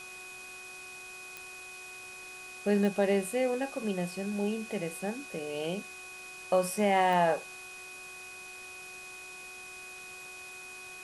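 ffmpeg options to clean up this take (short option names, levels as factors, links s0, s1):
-af "adeclick=t=4,bandreject=f=369.3:t=h:w=4,bandreject=f=738.6:t=h:w=4,bandreject=f=1107.9:t=h:w=4,bandreject=f=1477.2:t=h:w=4,bandreject=f=2500:w=30,afwtdn=0.0035"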